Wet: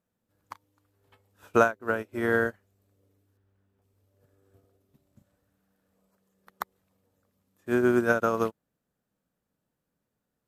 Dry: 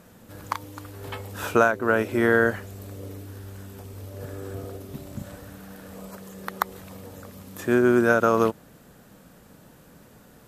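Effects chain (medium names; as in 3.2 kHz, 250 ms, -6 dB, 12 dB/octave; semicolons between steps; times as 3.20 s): 3.37–3.82 s: tone controls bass 0 dB, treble -12 dB; upward expansion 2.5:1, over -36 dBFS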